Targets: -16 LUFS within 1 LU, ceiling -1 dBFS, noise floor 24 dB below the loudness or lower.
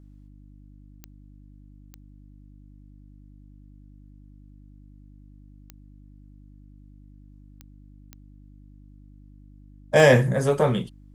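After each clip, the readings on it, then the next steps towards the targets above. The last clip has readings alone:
clicks found 6; hum 50 Hz; highest harmonic 300 Hz; hum level -46 dBFS; loudness -20.0 LUFS; peak level -4.0 dBFS; loudness target -16.0 LUFS
-> de-click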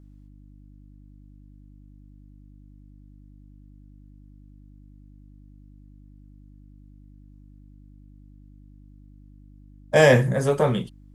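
clicks found 0; hum 50 Hz; highest harmonic 300 Hz; hum level -46 dBFS
-> de-hum 50 Hz, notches 6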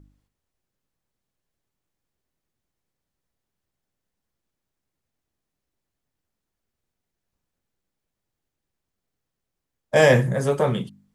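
hum not found; loudness -20.0 LUFS; peak level -3.5 dBFS; loudness target -16.0 LUFS
-> trim +4 dB; peak limiter -1 dBFS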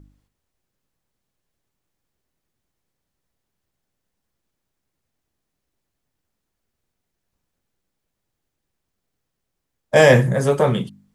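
loudness -16.0 LUFS; peak level -1.0 dBFS; noise floor -79 dBFS

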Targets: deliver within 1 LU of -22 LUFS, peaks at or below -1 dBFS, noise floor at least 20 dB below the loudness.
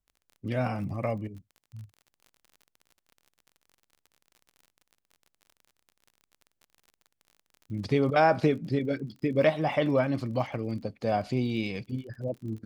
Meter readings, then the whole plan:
tick rate 39 per s; loudness -28.5 LUFS; peak level -10.5 dBFS; loudness target -22.0 LUFS
-> de-click; trim +6.5 dB

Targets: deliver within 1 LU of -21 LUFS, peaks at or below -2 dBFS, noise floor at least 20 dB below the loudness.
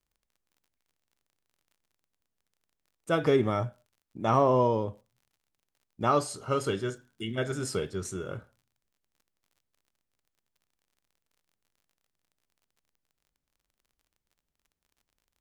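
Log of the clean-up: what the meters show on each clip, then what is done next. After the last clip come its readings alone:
tick rate 35 per s; loudness -29.0 LUFS; peak level -10.5 dBFS; loudness target -21.0 LUFS
-> de-click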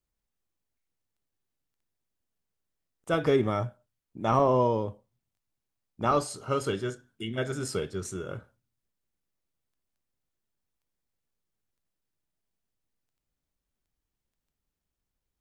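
tick rate 0 per s; loudness -29.0 LUFS; peak level -10.5 dBFS; loudness target -21.0 LUFS
-> trim +8 dB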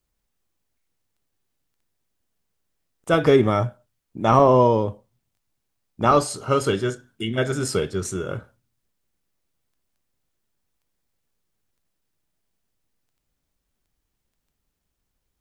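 loudness -21.0 LUFS; peak level -2.5 dBFS; noise floor -78 dBFS

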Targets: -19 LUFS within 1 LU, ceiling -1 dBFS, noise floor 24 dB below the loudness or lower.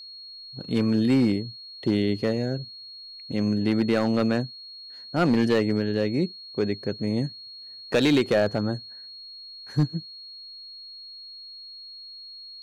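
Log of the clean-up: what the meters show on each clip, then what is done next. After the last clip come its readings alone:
clipped samples 0.7%; clipping level -14.5 dBFS; steady tone 4.3 kHz; tone level -40 dBFS; loudness -25.0 LUFS; peak level -14.5 dBFS; loudness target -19.0 LUFS
-> clip repair -14.5 dBFS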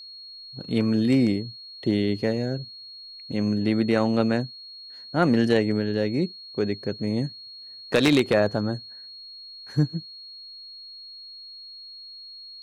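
clipped samples 0.0%; steady tone 4.3 kHz; tone level -40 dBFS
-> band-stop 4.3 kHz, Q 30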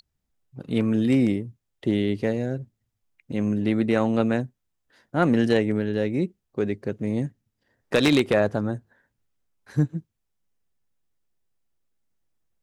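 steady tone not found; loudness -24.5 LUFS; peak level -5.5 dBFS; loudness target -19.0 LUFS
-> trim +5.5 dB; peak limiter -1 dBFS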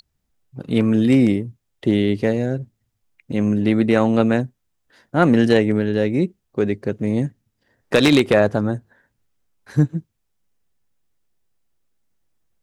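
loudness -19.0 LUFS; peak level -1.0 dBFS; noise floor -74 dBFS

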